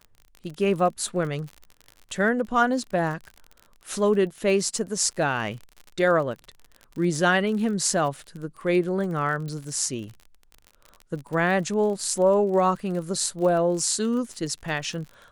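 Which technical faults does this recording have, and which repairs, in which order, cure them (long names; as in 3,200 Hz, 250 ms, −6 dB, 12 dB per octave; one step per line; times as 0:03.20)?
surface crackle 42 per second −33 dBFS
0:09.48: click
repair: click removal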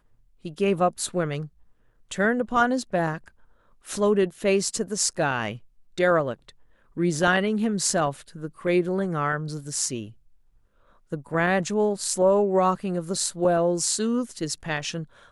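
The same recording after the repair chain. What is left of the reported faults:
none of them is left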